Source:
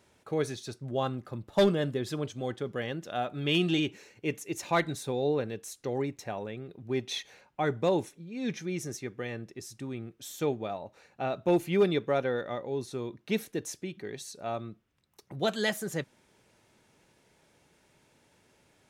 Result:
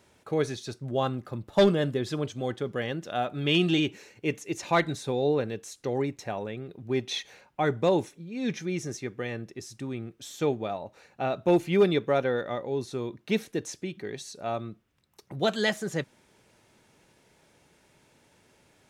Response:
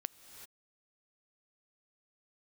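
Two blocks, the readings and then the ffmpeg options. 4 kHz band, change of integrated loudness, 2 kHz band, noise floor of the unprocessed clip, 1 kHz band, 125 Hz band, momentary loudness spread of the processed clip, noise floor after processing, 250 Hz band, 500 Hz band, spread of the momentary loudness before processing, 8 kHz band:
+3.0 dB, +3.0 dB, +3.0 dB, −67 dBFS, +3.0 dB, +3.0 dB, 14 LU, −64 dBFS, +3.0 dB, +3.0 dB, 14 LU, +0.5 dB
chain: -filter_complex "[0:a]acrossover=split=7800[link_01][link_02];[link_02]acompressor=threshold=-58dB:ratio=4:attack=1:release=60[link_03];[link_01][link_03]amix=inputs=2:normalize=0,volume=3dB"

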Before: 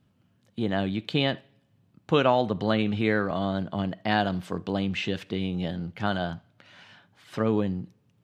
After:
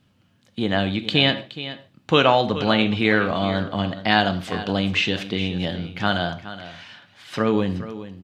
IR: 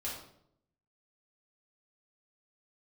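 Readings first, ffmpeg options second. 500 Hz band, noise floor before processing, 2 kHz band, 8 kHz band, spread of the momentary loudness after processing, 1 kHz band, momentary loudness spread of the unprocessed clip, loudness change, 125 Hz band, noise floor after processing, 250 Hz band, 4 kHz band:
+4.5 dB, −67 dBFS, +9.0 dB, can't be measured, 16 LU, +6.0 dB, 9 LU, +6.0 dB, +4.0 dB, −61 dBFS, +4.5 dB, +11.0 dB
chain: -filter_complex "[0:a]equalizer=frequency=3600:width=0.42:gain=7,aecho=1:1:421:0.2,asplit=2[link_01][link_02];[1:a]atrim=start_sample=2205,atrim=end_sample=6615[link_03];[link_02][link_03]afir=irnorm=-1:irlink=0,volume=-9.5dB[link_04];[link_01][link_04]amix=inputs=2:normalize=0,volume=2dB"

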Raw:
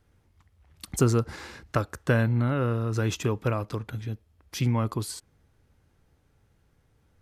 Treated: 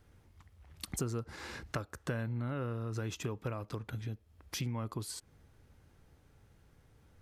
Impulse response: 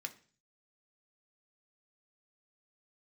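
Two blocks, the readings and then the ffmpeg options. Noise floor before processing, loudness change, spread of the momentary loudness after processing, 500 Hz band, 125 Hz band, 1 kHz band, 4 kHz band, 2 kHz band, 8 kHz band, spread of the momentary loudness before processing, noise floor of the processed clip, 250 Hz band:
−67 dBFS, −12.0 dB, 8 LU, −12.5 dB, −11.5 dB, −11.5 dB, −6.0 dB, −10.5 dB, −6.5 dB, 15 LU, −66 dBFS, −12.0 dB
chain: -af "acompressor=threshold=-41dB:ratio=3,volume=2dB"

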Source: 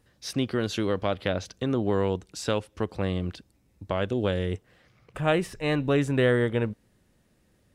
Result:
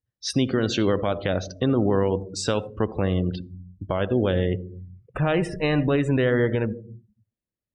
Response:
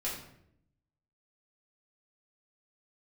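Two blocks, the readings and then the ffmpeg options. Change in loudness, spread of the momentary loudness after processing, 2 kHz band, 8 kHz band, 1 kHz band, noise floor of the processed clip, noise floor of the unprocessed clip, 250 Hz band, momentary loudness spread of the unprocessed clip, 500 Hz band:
+3.5 dB, 12 LU, +1.5 dB, +5.0 dB, +2.0 dB, below −85 dBFS, −66 dBFS, +4.5 dB, 10 LU, +3.0 dB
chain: -filter_complex "[0:a]alimiter=limit=-19dB:level=0:latency=1:release=140,asplit=2[link_01][link_02];[1:a]atrim=start_sample=2205,adelay=61[link_03];[link_02][link_03]afir=irnorm=-1:irlink=0,volume=-15.5dB[link_04];[link_01][link_04]amix=inputs=2:normalize=0,afftdn=noise_reduction=36:noise_floor=-43,volume=7.5dB"

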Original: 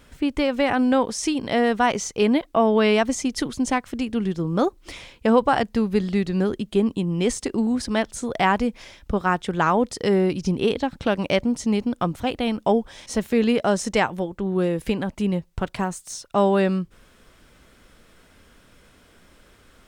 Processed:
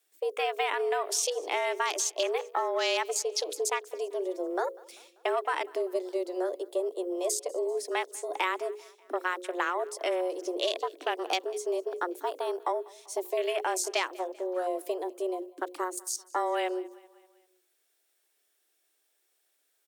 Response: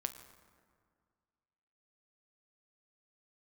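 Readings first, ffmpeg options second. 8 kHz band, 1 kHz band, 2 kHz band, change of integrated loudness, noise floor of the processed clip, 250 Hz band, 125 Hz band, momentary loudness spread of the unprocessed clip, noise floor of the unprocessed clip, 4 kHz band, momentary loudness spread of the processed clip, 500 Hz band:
0.0 dB, −7.0 dB, −6.5 dB, −8.5 dB, −74 dBFS, −19.0 dB, below −40 dB, 8 LU, −55 dBFS, −3.5 dB, 7 LU, −7.0 dB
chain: -filter_complex "[0:a]aemphasis=mode=production:type=50fm,agate=range=-7dB:threshold=-40dB:ratio=16:detection=peak,afwtdn=0.0316,highpass=frequency=120:width=0.5412,highpass=frequency=120:width=1.3066,highshelf=frequency=2100:gain=8.5,bandreject=frequency=60:width_type=h:width=6,bandreject=frequency=120:width_type=h:width=6,bandreject=frequency=180:width_type=h:width=6,bandreject=frequency=240:width_type=h:width=6,bandreject=frequency=300:width_type=h:width=6,bandreject=frequency=360:width_type=h:width=6,afreqshift=180,acrossover=split=300|5000[link_01][link_02][link_03];[link_01]acompressor=threshold=-46dB:ratio=4[link_04];[link_02]acompressor=threshold=-21dB:ratio=4[link_05];[link_03]acompressor=threshold=-30dB:ratio=4[link_06];[link_04][link_05][link_06]amix=inputs=3:normalize=0,asoftclip=type=hard:threshold=-10dB,asplit=2[link_07][link_08];[link_08]aecho=0:1:195|390|585|780:0.0668|0.0361|0.0195|0.0105[link_09];[link_07][link_09]amix=inputs=2:normalize=0,volume=-5.5dB"

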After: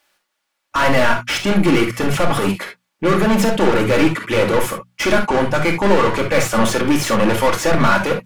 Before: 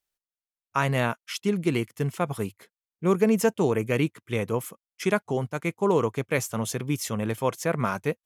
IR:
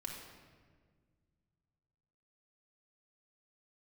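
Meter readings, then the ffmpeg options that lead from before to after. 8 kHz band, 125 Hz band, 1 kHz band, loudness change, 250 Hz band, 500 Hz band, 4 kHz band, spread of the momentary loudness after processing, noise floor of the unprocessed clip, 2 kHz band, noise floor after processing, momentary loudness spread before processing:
+9.0 dB, +6.5 dB, +12.5 dB, +10.0 dB, +10.0 dB, +9.0 dB, +14.5 dB, 5 LU, below −85 dBFS, +13.0 dB, −74 dBFS, 8 LU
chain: -filter_complex "[0:a]asplit=2[link_01][link_02];[link_02]highpass=frequency=720:poles=1,volume=34dB,asoftclip=type=tanh:threshold=-9.5dB[link_03];[link_01][link_03]amix=inputs=2:normalize=0,lowpass=frequency=2000:poles=1,volume=-6dB,bandreject=frequency=60:width_type=h:width=6,bandreject=frequency=120:width_type=h:width=6,bandreject=frequency=180:width_type=h:width=6,bandreject=frequency=240:width_type=h:width=6[link_04];[1:a]atrim=start_sample=2205,atrim=end_sample=3528[link_05];[link_04][link_05]afir=irnorm=-1:irlink=0,volume=6dB"

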